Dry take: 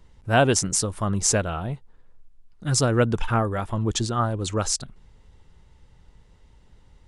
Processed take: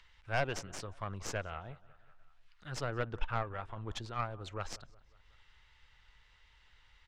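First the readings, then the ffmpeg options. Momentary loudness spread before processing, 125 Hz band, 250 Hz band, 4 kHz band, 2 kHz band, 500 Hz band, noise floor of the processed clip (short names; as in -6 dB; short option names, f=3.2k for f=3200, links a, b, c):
9 LU, -16.5 dB, -21.0 dB, -16.5 dB, -11.0 dB, -15.5 dB, -65 dBFS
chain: -filter_complex "[0:a]equalizer=f=220:w=0.55:g=-12.5,asplit=2[a][b];[b]adelay=183,lowpass=f=2.3k:p=1,volume=-19.5dB,asplit=2[c][d];[d]adelay=183,lowpass=f=2.3k:p=1,volume=0.5,asplit=2[e][f];[f]adelay=183,lowpass=f=2.3k:p=1,volume=0.5,asplit=2[g][h];[h]adelay=183,lowpass=f=2.3k:p=1,volume=0.5[i];[c][e][g][i]amix=inputs=4:normalize=0[j];[a][j]amix=inputs=2:normalize=0,aeval=exprs='0.668*(cos(1*acos(clip(val(0)/0.668,-1,1)))-cos(1*PI/2))+0.0841*(cos(3*acos(clip(val(0)/0.668,-1,1)))-cos(3*PI/2))+0.0335*(cos(4*acos(clip(val(0)/0.668,-1,1)))-cos(4*PI/2))+0.0211*(cos(8*acos(clip(val(0)/0.668,-1,1)))-cos(8*PI/2))':c=same,lowpass=3.2k,acrossover=split=280|1300[k][l][m];[m]acompressor=mode=upward:threshold=-45dB:ratio=2.5[n];[k][l][n]amix=inputs=3:normalize=0,aeval=exprs='(tanh(8.91*val(0)+0.6)-tanh(0.6))/8.91':c=same,volume=-4dB"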